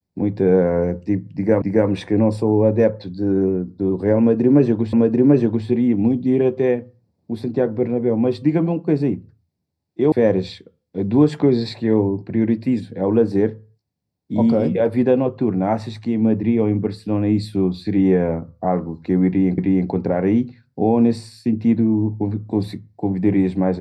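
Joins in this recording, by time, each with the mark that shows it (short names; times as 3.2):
1.62 repeat of the last 0.27 s
4.93 repeat of the last 0.74 s
10.12 sound cut off
19.58 repeat of the last 0.31 s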